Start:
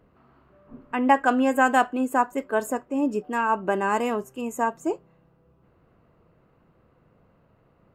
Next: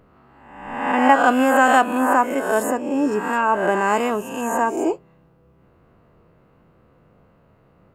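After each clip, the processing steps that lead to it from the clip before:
peak hold with a rise ahead of every peak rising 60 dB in 0.99 s
level +3 dB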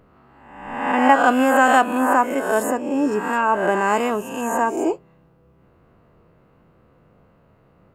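no processing that can be heard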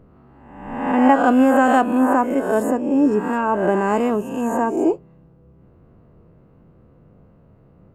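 tilt shelving filter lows +7 dB, about 650 Hz

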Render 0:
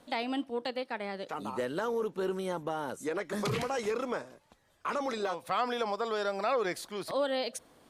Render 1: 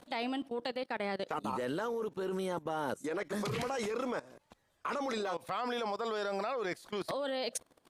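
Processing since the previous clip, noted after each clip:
output level in coarse steps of 20 dB
level +5 dB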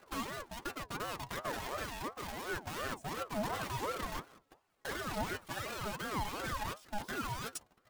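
each half-wave held at its own peak
stiff-string resonator 63 Hz, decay 0.28 s, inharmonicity 0.03
ring modulator whose carrier an LFO sweeps 680 Hz, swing 40%, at 2.8 Hz
level +2.5 dB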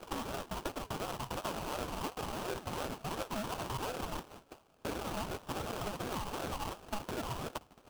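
downward compressor 5 to 1, threshold −46 dBFS, peak gain reduction 13.5 dB
sample-rate reduction 2,000 Hz, jitter 20%
level +10 dB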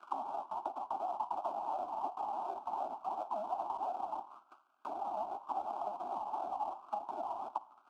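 envelope filter 730–1,600 Hz, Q 5, down, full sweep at −34 dBFS
phaser with its sweep stopped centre 490 Hz, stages 6
on a send at −18.5 dB: convolution reverb RT60 0.95 s, pre-delay 29 ms
on the sum: level +10 dB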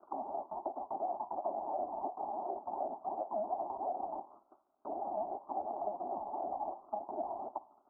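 transistor ladder low-pass 700 Hz, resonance 35%
level +11 dB

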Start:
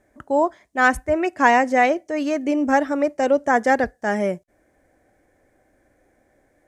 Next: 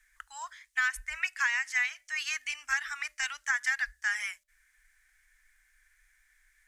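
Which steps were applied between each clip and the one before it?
inverse Chebyshev band-stop filter 100–560 Hz, stop band 60 dB
mains-hum notches 60/120/180/240/300/360/420/480/540/600 Hz
downward compressor 12 to 1, threshold −29 dBFS, peak gain reduction 12 dB
level +4 dB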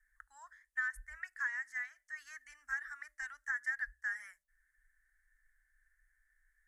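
drawn EQ curve 160 Hz 0 dB, 980 Hz −11 dB, 1,800 Hz −2 dB, 2,500 Hz −27 dB, 10,000 Hz −10 dB
level −4 dB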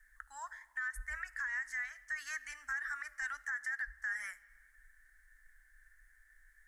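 downward compressor, threshold −41 dBFS, peak gain reduction 10 dB
brickwall limiter −40.5 dBFS, peak gain reduction 8 dB
convolution reverb RT60 2.1 s, pre-delay 15 ms, DRR 15.5 dB
level +10 dB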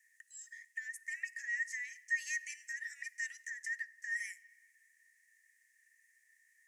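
Chebyshev high-pass with heavy ripple 1,800 Hz, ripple 9 dB
level +7 dB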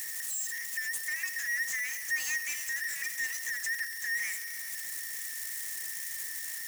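spike at every zero crossing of −36.5 dBFS
power curve on the samples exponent 0.5

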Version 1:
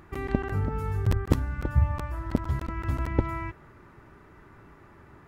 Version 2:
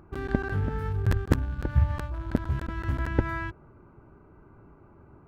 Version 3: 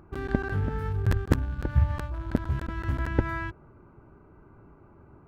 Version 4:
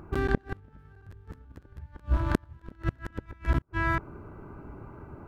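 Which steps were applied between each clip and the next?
adaptive Wiener filter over 25 samples; parametric band 1,600 Hz +12.5 dB 0.31 octaves
no processing that can be heard
delay that plays each chunk backwards 362 ms, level −0.5 dB; gate with flip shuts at −19 dBFS, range −32 dB; level +6 dB

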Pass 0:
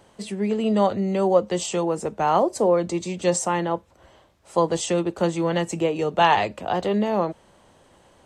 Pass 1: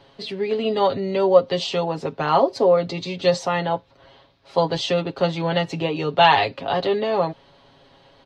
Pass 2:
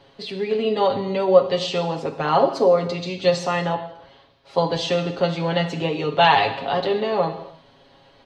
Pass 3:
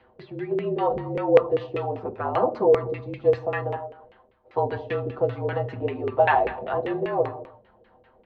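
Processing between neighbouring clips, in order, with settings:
high shelf with overshoot 5,900 Hz −12.5 dB, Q 3; comb filter 7.3 ms, depth 76%
reverb whose tail is shaped and stops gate 320 ms falling, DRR 6 dB; level −1 dB
frequency shifter −48 Hz; auto-filter low-pass saw down 5.1 Hz 410–2,300 Hz; level −7 dB

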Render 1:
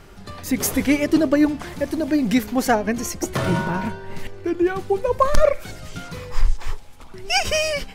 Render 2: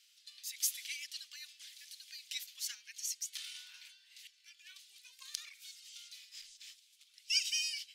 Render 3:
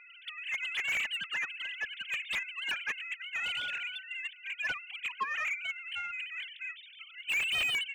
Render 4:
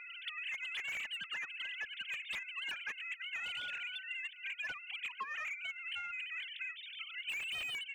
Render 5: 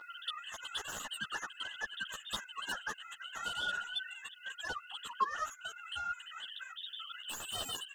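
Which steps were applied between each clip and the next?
inverse Chebyshev high-pass filter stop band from 750 Hz, stop band 70 dB; high-shelf EQ 5,600 Hz −10 dB; level −2.5 dB
three sine waves on the formant tracks; mid-hump overdrive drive 36 dB, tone 1,600 Hz, clips at −19.5 dBFS
downward compressor 6 to 1, threshold −45 dBFS, peak gain reduction 16 dB; level +5 dB
Butterworth band-reject 2,300 Hz, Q 1; string-ensemble chorus; level +15 dB

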